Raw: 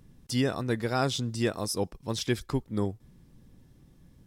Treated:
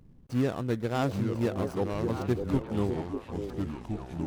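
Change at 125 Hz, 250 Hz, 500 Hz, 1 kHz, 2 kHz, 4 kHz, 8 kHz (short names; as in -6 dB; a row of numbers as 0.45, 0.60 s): +1.5, +2.0, +1.0, -0.5, -5.0, -10.5, -13.5 dB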